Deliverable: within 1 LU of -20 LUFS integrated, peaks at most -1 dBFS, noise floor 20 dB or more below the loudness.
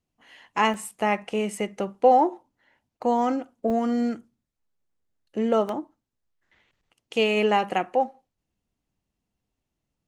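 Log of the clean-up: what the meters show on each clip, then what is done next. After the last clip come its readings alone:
dropouts 3; longest dropout 1.4 ms; loudness -24.5 LUFS; peak -6.5 dBFS; loudness target -20.0 LUFS
-> interpolate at 0.74/3.7/5.69, 1.4 ms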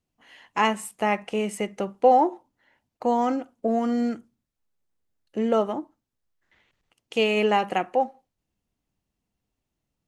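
dropouts 0; loudness -24.5 LUFS; peak -6.5 dBFS; loudness target -20.0 LUFS
-> gain +4.5 dB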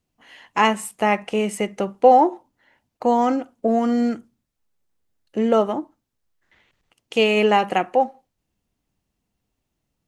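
loudness -20.0 LUFS; peak -2.0 dBFS; noise floor -78 dBFS

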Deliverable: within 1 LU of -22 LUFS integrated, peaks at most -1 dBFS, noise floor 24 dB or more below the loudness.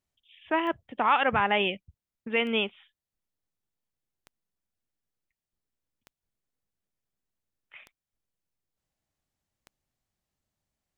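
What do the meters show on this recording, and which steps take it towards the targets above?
clicks 6; loudness -26.5 LUFS; peak -11.5 dBFS; loudness target -22.0 LUFS
-> de-click; gain +4.5 dB

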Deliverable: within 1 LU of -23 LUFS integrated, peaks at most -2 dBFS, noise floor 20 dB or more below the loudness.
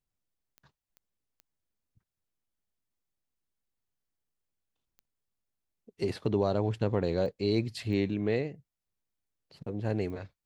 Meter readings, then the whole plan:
clicks 7; loudness -31.0 LUFS; peak -14.0 dBFS; loudness target -23.0 LUFS
-> de-click; gain +8 dB

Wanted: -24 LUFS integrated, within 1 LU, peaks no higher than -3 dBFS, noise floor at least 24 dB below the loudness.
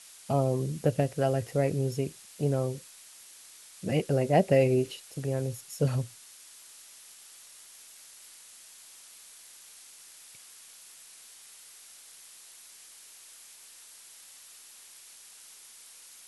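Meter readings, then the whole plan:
noise floor -52 dBFS; noise floor target -53 dBFS; loudness -29.0 LUFS; peak -10.0 dBFS; loudness target -24.0 LUFS
-> noise print and reduce 6 dB; gain +5 dB

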